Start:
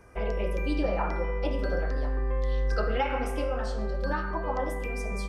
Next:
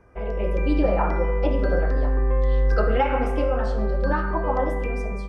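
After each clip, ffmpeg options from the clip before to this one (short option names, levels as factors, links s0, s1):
-af "lowpass=f=1600:p=1,dynaudnorm=f=120:g=7:m=2.37"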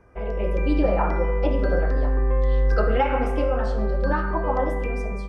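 -af anull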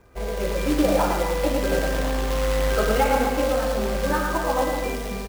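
-af "acrusher=bits=3:mode=log:mix=0:aa=0.000001,aecho=1:1:110.8|253.6:0.562|0.316"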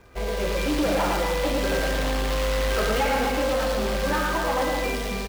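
-filter_complex "[0:a]acrossover=split=4300[s0][s1];[s0]crystalizer=i=4:c=0[s2];[s2][s1]amix=inputs=2:normalize=0,asoftclip=type=tanh:threshold=0.0944,volume=1.19"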